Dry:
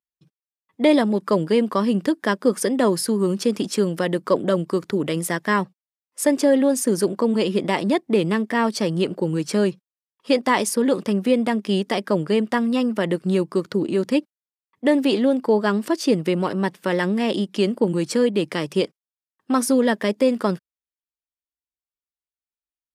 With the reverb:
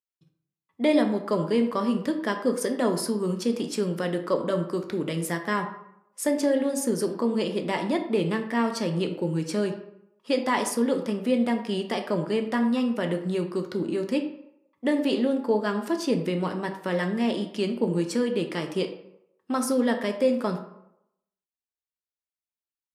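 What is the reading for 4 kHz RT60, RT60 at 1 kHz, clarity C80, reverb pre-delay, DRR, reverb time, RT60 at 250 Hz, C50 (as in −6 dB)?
0.45 s, 0.80 s, 11.5 dB, 8 ms, 5.0 dB, 0.80 s, 0.70 s, 9.0 dB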